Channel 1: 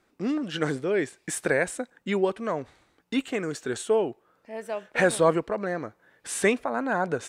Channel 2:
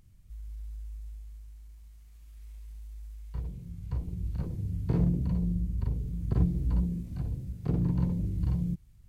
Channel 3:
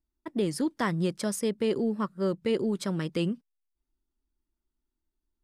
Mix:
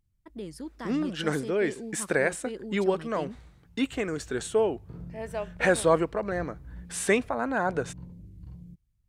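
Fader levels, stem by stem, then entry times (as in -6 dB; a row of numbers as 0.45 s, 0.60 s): -1.0 dB, -16.0 dB, -11.0 dB; 0.65 s, 0.00 s, 0.00 s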